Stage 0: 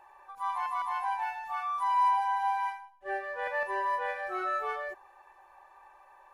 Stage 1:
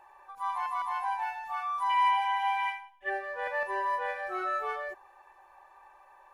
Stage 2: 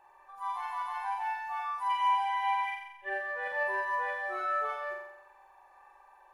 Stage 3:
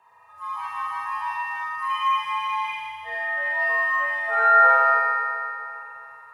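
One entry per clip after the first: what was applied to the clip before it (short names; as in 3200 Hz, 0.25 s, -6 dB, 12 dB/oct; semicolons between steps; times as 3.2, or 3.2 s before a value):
spectral gain 1.9–3.09, 1600–3700 Hz +12 dB
flutter echo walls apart 7.6 m, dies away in 0.85 s; gain -5 dB
spectral gain 4.28–4.94, 210–2100 Hz +9 dB; FDN reverb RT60 2.8 s, low-frequency decay 1.2×, high-frequency decay 0.9×, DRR -5 dB; frequency shift +81 Hz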